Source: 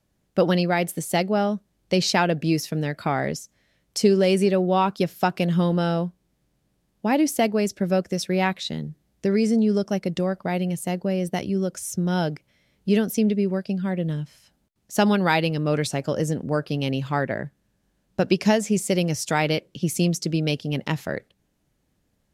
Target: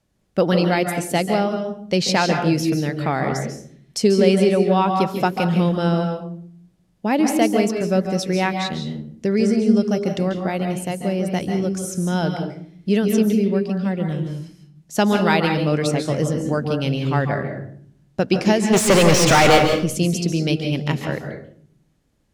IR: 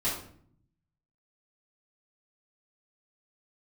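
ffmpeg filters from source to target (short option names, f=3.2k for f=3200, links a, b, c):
-filter_complex "[0:a]lowpass=12k,asplit=3[a][b][c];[a]afade=t=out:st=18.72:d=0.02[d];[b]asplit=2[e][f];[f]highpass=f=720:p=1,volume=35dB,asoftclip=type=tanh:threshold=-8dB[g];[e][g]amix=inputs=2:normalize=0,lowpass=f=2.9k:p=1,volume=-6dB,afade=t=in:st=18.72:d=0.02,afade=t=out:st=19.68:d=0.02[h];[c]afade=t=in:st=19.68:d=0.02[i];[d][h][i]amix=inputs=3:normalize=0,asplit=2[j][k];[1:a]atrim=start_sample=2205,asetrate=48510,aresample=44100,adelay=136[l];[k][l]afir=irnorm=-1:irlink=0,volume=-11.5dB[m];[j][m]amix=inputs=2:normalize=0,volume=1.5dB"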